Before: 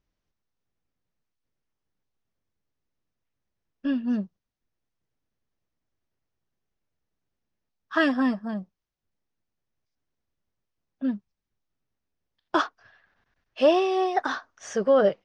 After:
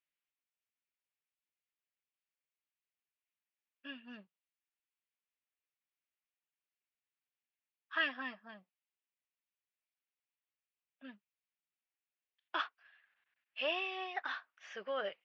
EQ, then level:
resonant band-pass 2,600 Hz, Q 2.3
high-frequency loss of the air 170 metres
+1.0 dB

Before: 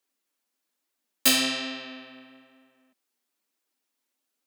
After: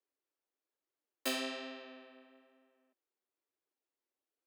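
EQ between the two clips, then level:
four-pole ladder high-pass 310 Hz, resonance 45%
high-shelf EQ 2,800 Hz −11.5 dB
0.0 dB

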